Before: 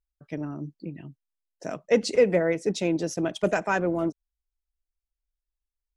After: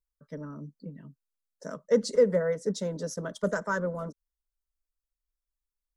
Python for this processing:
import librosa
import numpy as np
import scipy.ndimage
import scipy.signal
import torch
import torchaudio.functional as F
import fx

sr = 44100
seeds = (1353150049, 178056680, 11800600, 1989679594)

y = fx.fixed_phaser(x, sr, hz=500.0, stages=8)
y = y * 10.0 ** (-1.5 / 20.0)